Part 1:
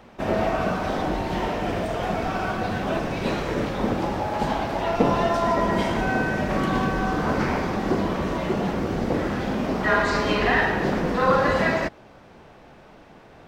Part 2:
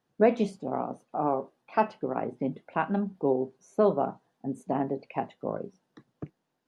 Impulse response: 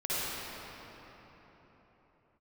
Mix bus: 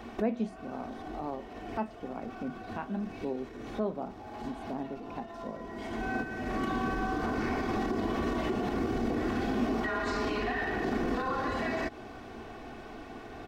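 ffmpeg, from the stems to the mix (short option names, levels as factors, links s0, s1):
-filter_complex "[0:a]aecho=1:1:2.7:0.64,acompressor=threshold=0.0631:ratio=6,alimiter=level_in=1.26:limit=0.0631:level=0:latency=1:release=73,volume=0.794,volume=1.19[s0];[1:a]volume=0.282,asplit=2[s1][s2];[s2]apad=whole_len=594423[s3];[s0][s3]sidechaincompress=threshold=0.002:ratio=4:attack=37:release=527[s4];[s4][s1]amix=inputs=2:normalize=0,equalizer=f=230:t=o:w=0.39:g=9.5"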